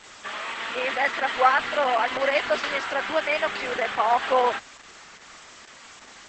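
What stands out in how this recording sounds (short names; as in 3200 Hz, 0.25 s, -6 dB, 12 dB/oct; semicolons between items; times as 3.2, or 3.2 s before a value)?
a quantiser's noise floor 8-bit, dither triangular; Opus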